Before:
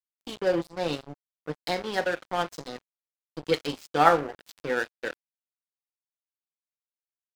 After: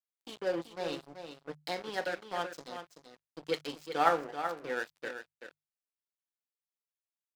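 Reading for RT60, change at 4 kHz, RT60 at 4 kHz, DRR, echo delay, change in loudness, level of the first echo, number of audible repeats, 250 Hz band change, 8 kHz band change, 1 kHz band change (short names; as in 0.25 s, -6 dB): none, -6.5 dB, none, none, 0.382 s, -8.0 dB, -9.0 dB, 1, -8.5 dB, -6.5 dB, -7.0 dB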